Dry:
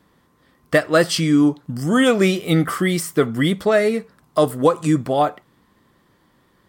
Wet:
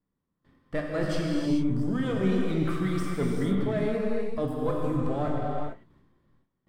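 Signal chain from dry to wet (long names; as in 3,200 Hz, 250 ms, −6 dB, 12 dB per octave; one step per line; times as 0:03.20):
gain on one half-wave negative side −7 dB
noise gate with hold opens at −48 dBFS
low-shelf EQ 350 Hz +11.5 dB
reversed playback
downward compressor, threshold −17 dBFS, peak gain reduction 11.5 dB
reversed playback
low-pass filter 3,100 Hz 6 dB per octave
reverb whose tail is shaped and stops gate 470 ms flat, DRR −2 dB
level −8.5 dB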